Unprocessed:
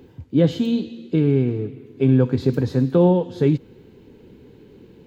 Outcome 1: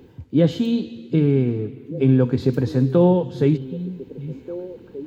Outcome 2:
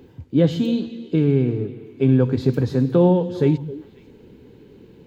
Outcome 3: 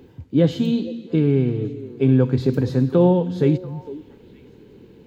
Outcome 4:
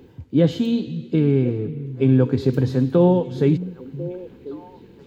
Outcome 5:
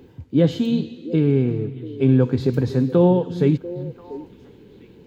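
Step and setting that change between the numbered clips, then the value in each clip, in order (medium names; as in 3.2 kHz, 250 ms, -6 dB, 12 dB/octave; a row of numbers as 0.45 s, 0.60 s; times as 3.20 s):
repeats whose band climbs or falls, time: 766 ms, 134 ms, 230 ms, 522 ms, 345 ms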